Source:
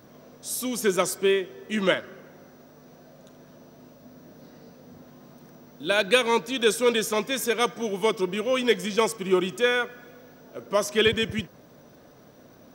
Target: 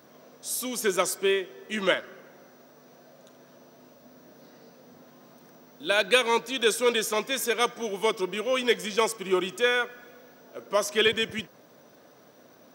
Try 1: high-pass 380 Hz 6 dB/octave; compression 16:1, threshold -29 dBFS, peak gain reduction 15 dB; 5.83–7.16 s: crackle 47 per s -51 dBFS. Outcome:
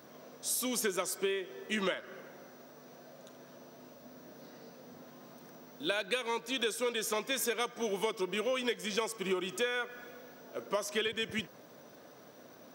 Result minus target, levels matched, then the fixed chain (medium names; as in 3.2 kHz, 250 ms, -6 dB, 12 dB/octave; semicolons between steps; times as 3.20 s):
compression: peak gain reduction +15 dB
high-pass 380 Hz 6 dB/octave; 5.83–7.16 s: crackle 47 per s -51 dBFS